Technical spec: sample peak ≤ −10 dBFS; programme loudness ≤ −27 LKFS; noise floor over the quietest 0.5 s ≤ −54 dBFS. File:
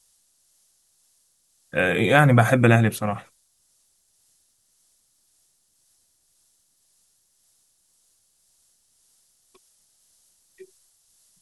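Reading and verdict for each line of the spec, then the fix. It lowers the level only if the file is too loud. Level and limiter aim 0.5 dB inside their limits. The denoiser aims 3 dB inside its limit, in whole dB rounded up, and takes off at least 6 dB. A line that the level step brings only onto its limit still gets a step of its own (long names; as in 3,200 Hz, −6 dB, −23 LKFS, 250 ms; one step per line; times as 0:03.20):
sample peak −2.5 dBFS: out of spec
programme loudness −19.5 LKFS: out of spec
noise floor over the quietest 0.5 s −66 dBFS: in spec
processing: level −8 dB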